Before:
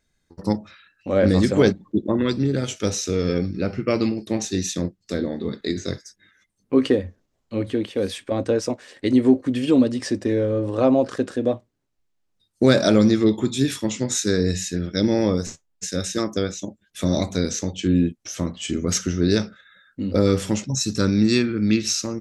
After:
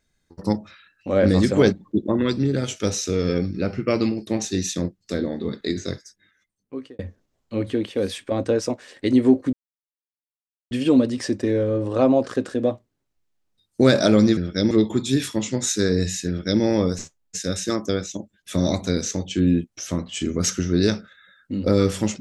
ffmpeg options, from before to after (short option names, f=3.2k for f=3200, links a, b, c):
-filter_complex "[0:a]asplit=5[a][b][c][d][e];[a]atrim=end=6.99,asetpts=PTS-STARTPTS,afade=t=out:st=5.75:d=1.24[f];[b]atrim=start=6.99:end=9.53,asetpts=PTS-STARTPTS,afade=t=in:d=0.004:c=hsin,afade=t=out:st=2.536:d=0.004:c=hsin,apad=pad_dur=1.18[g];[c]atrim=start=9.53:end=13.192,asetpts=PTS-STARTPTS,afade=t=in:d=0.004:c=hsin[h];[d]atrim=start=14.758:end=15.102[i];[e]atrim=start=13.188[j];[f][g][h]concat=n=3:v=0:a=1[k];[k][i]acrossfade=d=0.004:c1=hsin:c2=hsin[l];[l][j]acrossfade=d=0.004:c1=hsin:c2=hsin"